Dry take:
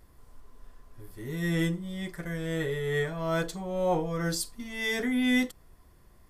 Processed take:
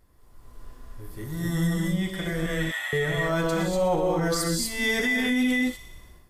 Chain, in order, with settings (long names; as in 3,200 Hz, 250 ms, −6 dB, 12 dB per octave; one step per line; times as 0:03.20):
0:01.24–0:01.77: phaser with its sweep stopped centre 1,000 Hz, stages 4
0:02.46–0:02.93: elliptic high-pass filter 700 Hz, stop band 40 dB
delay with a high-pass on its return 61 ms, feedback 73%, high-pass 4,200 Hz, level −12 dB
reverb whose tail is shaped and stops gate 270 ms rising, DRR −1 dB
brickwall limiter −21 dBFS, peak gain reduction 9 dB
automatic gain control gain up to 9 dB
level −4.5 dB